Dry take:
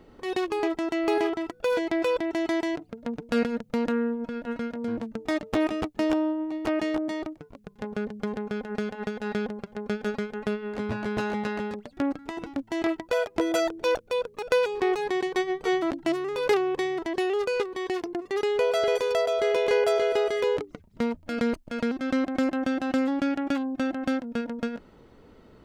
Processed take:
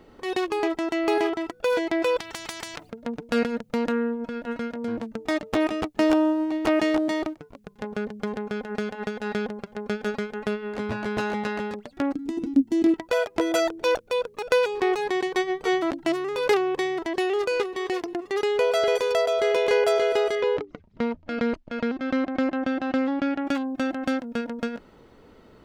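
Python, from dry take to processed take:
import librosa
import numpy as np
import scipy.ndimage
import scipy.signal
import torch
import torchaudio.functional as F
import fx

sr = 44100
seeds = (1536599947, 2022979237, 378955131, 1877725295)

y = fx.spectral_comp(x, sr, ratio=4.0, at=(2.18, 2.89), fade=0.02)
y = fx.leveller(y, sr, passes=1, at=(5.97, 7.39))
y = fx.curve_eq(y, sr, hz=(170.0, 260.0, 590.0, 1400.0, 6700.0), db=(0, 14, -10, -14, -1), at=(12.14, 12.94))
y = fx.echo_throw(y, sr, start_s=16.83, length_s=0.7, ms=450, feedback_pct=25, wet_db=-17.5)
y = fx.air_absorb(y, sr, metres=150.0, at=(20.35, 23.45))
y = fx.low_shelf(y, sr, hz=320.0, db=-4.0)
y = F.gain(torch.from_numpy(y), 3.0).numpy()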